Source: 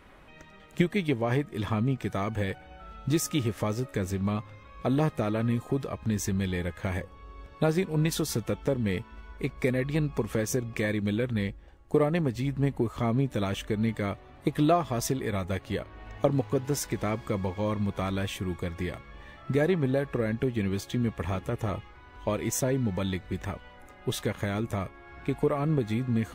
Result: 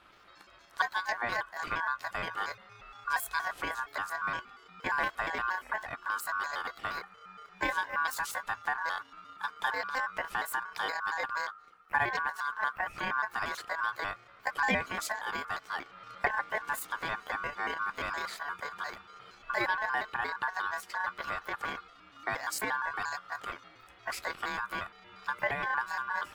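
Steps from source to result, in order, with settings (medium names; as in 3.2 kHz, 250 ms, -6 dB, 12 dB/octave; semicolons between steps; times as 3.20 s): pitch shift switched off and on +8 st, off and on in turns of 117 ms; ring modulator 1.3 kHz; trim -2.5 dB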